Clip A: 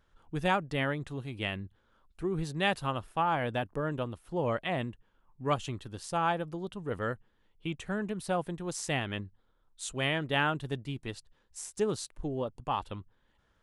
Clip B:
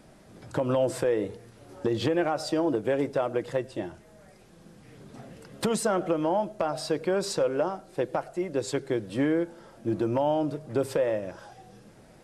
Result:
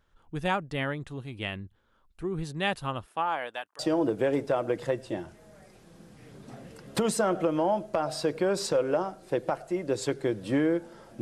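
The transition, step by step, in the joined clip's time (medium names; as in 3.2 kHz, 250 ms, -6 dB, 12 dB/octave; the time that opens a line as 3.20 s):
clip A
3.04–3.79 s: high-pass 180 Hz -> 1.4 kHz
3.79 s: go over to clip B from 2.45 s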